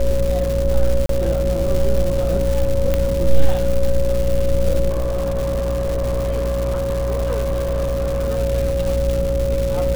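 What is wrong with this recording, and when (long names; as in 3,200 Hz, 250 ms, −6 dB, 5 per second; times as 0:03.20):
mains buzz 60 Hz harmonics 9 −22 dBFS
surface crackle 400 per second −22 dBFS
whistle 550 Hz −20 dBFS
0:01.06–0:01.09: drop-out 33 ms
0:02.94: click −6 dBFS
0:04.89–0:08.30: clipping −16.5 dBFS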